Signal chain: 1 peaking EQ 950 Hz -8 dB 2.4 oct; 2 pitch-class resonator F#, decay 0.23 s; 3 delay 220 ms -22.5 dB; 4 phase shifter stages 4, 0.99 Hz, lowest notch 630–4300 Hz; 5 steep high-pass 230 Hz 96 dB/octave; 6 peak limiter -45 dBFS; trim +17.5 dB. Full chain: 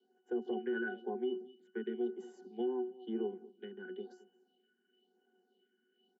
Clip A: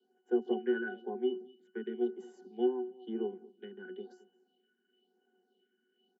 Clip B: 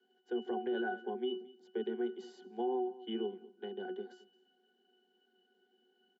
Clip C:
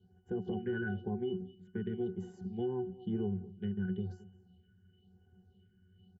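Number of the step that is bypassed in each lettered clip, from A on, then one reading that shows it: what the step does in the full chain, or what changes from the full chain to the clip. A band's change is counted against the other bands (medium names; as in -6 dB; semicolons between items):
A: 6, crest factor change +5.5 dB; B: 4, 1 kHz band +7.0 dB; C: 5, 250 Hz band +5.0 dB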